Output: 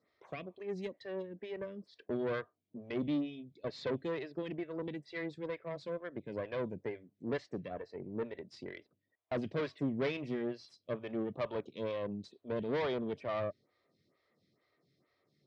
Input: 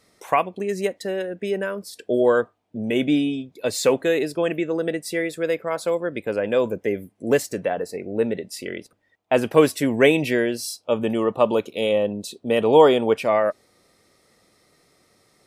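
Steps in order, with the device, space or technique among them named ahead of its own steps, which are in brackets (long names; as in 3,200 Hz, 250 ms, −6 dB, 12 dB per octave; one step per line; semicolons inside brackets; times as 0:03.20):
vibe pedal into a guitar amplifier (phaser with staggered stages 2.2 Hz; tube saturation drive 20 dB, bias 0.6; loudspeaker in its box 79–4,400 Hz, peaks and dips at 97 Hz +3 dB, 140 Hz +7 dB, 490 Hz −4 dB, 830 Hz −8 dB, 1,400 Hz −5 dB, 2,700 Hz −5 dB)
level −7.5 dB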